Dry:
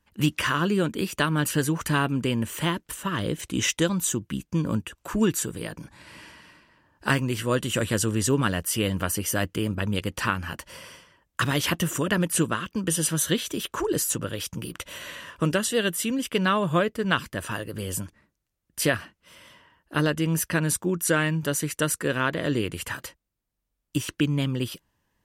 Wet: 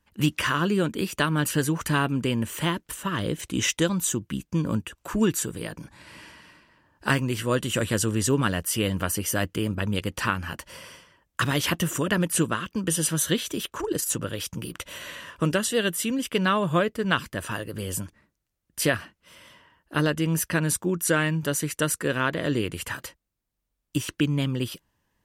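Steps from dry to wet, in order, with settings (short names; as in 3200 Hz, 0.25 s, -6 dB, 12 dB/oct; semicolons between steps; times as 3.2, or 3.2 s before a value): 13.65–14.07 AM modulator 26 Hz, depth 40%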